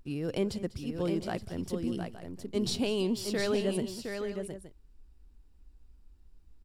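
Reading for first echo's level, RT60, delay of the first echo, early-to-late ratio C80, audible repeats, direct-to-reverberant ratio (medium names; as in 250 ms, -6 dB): -18.0 dB, no reverb, 196 ms, no reverb, 3, no reverb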